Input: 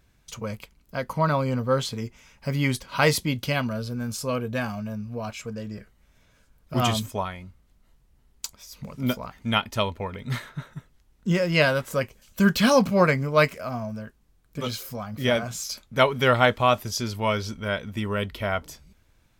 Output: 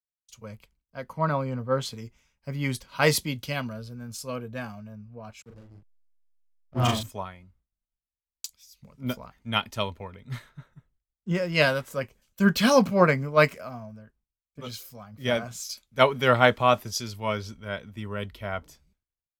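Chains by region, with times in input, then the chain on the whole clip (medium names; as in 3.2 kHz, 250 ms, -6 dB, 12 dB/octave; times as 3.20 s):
5.42–7.03 s: hysteresis with a dead band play -29 dBFS + doubling 40 ms -3 dB
whole clip: expander -50 dBFS; three bands expanded up and down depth 70%; trim -4.5 dB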